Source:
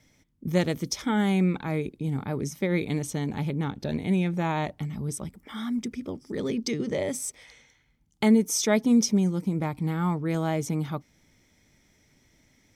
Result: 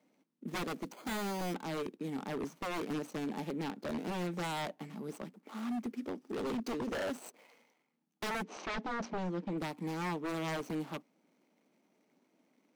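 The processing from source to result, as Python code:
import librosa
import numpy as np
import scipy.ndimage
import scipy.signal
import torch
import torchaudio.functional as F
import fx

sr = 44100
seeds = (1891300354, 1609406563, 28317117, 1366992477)

y = scipy.signal.medfilt(x, 25)
y = scipy.signal.sosfilt(scipy.signal.butter(6, 190.0, 'highpass', fs=sr, output='sos'), y)
y = fx.low_shelf(y, sr, hz=330.0, db=-7.5)
y = 10.0 ** (-31.0 / 20.0) * (np.abs((y / 10.0 ** (-31.0 / 20.0) + 3.0) % 4.0 - 2.0) - 1.0)
y = fx.resample_bad(y, sr, factor=8, down='filtered', up='hold', at=(0.92, 1.54))
y = fx.gaussian_blur(y, sr, sigma=1.7, at=(8.42, 9.57), fade=0.02)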